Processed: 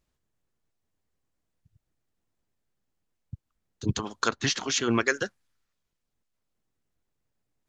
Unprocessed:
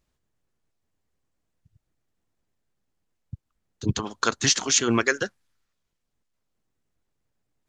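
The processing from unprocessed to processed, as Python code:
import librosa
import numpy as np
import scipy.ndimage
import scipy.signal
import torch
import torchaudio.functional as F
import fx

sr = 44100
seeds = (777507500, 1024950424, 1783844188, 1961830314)

y = fx.lowpass(x, sr, hz=fx.line((4.28, 3600.0), (5.06, 6000.0)), slope=12, at=(4.28, 5.06), fade=0.02)
y = F.gain(torch.from_numpy(y), -2.5).numpy()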